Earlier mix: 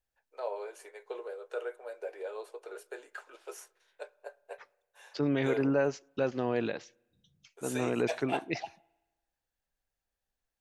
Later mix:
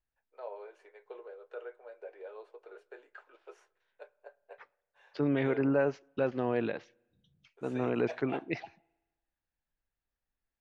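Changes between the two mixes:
first voice -6.5 dB; master: add low-pass 2.9 kHz 12 dB/octave

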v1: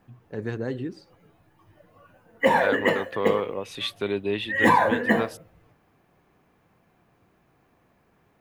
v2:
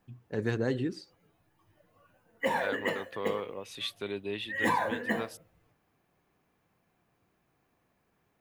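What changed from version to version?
second voice -9.5 dB; background -10.5 dB; master: add treble shelf 3.1 kHz +7 dB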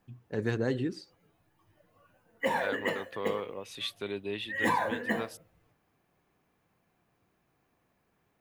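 no change

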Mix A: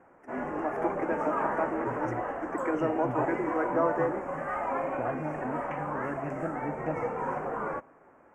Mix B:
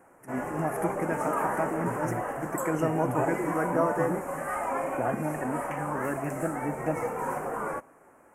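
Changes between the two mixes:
first voice: remove steep high-pass 250 Hz 72 dB/octave; second voice +3.5 dB; master: remove distance through air 180 m

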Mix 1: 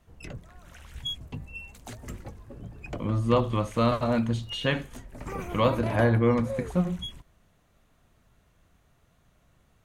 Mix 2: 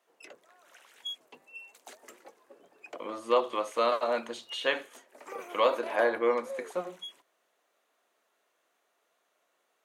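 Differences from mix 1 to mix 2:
background -4.5 dB; master: add high-pass 390 Hz 24 dB/octave

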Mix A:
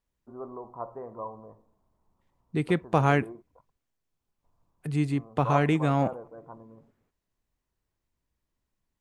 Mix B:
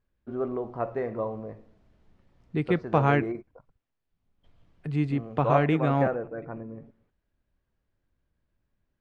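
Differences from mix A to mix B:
first voice: remove four-pole ladder low-pass 1.1 kHz, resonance 70%; master: add low-pass 3.4 kHz 12 dB/octave

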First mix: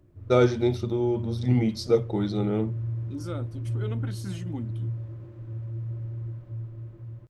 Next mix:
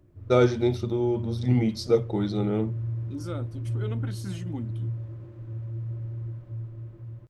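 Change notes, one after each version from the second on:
no change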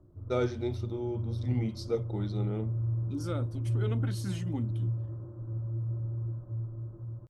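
first voice -9.5 dB; background: add steep low-pass 1.4 kHz 48 dB/octave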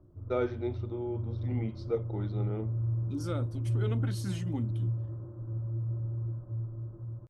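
first voice: add band-pass 230–2500 Hz

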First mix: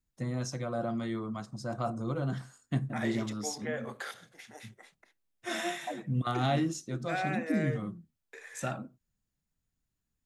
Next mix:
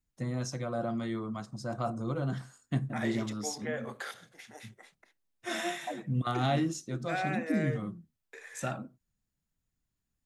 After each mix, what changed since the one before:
no change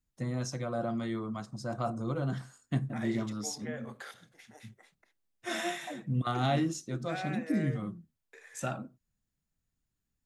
second voice -5.5 dB

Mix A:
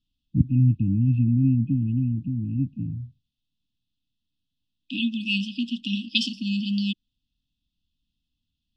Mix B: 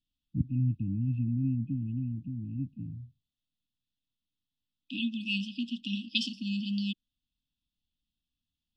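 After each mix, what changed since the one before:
first voice -9.5 dB; second voice -6.5 dB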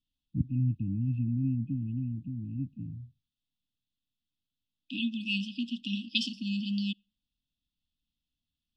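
second voice: send on

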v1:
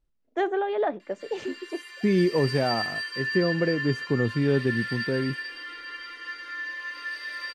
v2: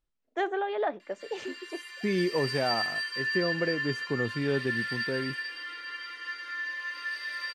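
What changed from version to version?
master: add bass shelf 450 Hz -9 dB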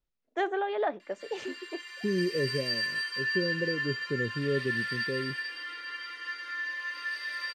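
second voice: add rippled Chebyshev low-pass 580 Hz, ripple 3 dB

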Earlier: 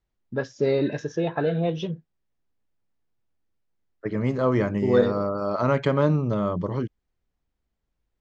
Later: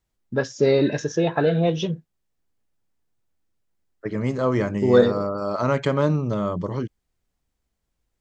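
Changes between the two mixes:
first voice +4.0 dB; master: remove distance through air 110 m

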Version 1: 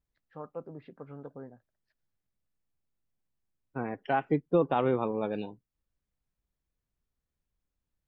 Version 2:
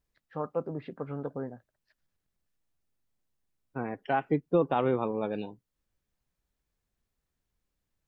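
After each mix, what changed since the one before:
first voice +8.5 dB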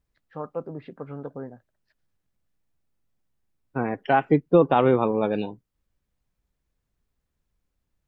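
second voice +8.0 dB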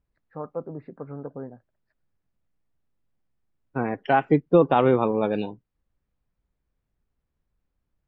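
first voice: add boxcar filter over 14 samples

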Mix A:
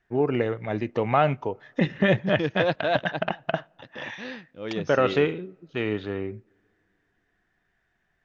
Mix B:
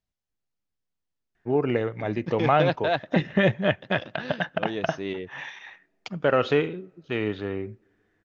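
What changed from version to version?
first voice: entry +1.35 s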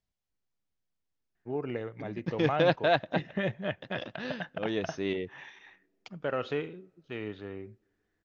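first voice -10.5 dB

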